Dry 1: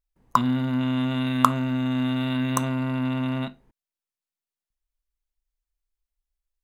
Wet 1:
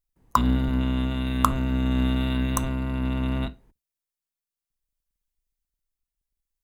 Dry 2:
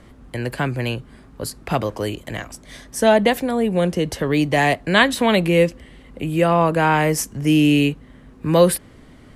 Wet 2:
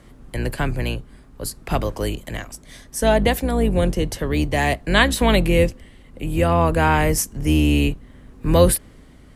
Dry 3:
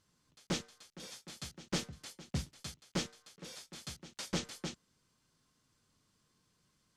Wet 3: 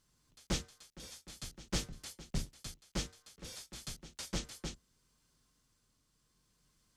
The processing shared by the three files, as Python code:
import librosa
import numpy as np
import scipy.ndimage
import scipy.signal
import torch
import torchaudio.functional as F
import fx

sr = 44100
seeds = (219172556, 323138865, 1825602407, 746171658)

y = fx.octave_divider(x, sr, octaves=2, level_db=2.0)
y = fx.high_shelf(y, sr, hz=6500.0, db=7.0)
y = fx.tremolo_shape(y, sr, shape='triangle', hz=0.62, depth_pct=35)
y = F.gain(torch.from_numpy(y), -1.0).numpy()